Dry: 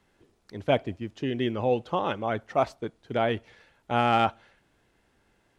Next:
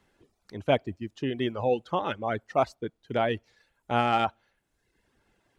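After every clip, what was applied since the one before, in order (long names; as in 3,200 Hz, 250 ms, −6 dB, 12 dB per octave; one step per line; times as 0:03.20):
reverb reduction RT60 0.88 s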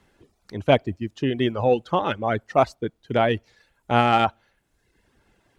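harmonic generator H 3 −28 dB, 4 −42 dB, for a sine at −8.5 dBFS
low-shelf EQ 160 Hz +3.5 dB
level +6.5 dB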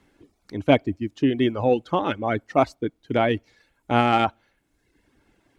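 hollow resonant body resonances 290/2,200 Hz, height 9 dB
level −1.5 dB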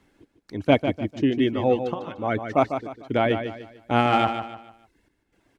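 gate pattern "x.xxxxxx.x" 62 BPM −12 dB
on a send: repeating echo 149 ms, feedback 35%, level −8.5 dB
on the sum: level −1 dB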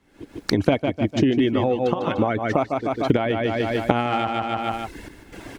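camcorder AGC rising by 79 dB per second
level −3.5 dB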